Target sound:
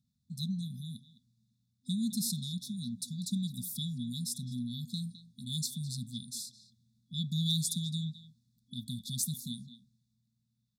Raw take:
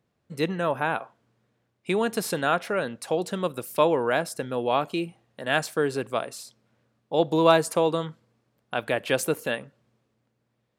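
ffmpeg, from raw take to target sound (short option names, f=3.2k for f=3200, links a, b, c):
-filter_complex "[0:a]afftfilt=real='re*(1-between(b*sr/4096,250,3400))':imag='im*(1-between(b*sr/4096,250,3400))':win_size=4096:overlap=0.75,dynaudnorm=f=660:g=7:m=3dB,asplit=2[a][b];[b]adelay=210,highpass=300,lowpass=3.4k,asoftclip=type=hard:threshold=-22.5dB,volume=-9dB[c];[a][c]amix=inputs=2:normalize=0,volume=-2.5dB"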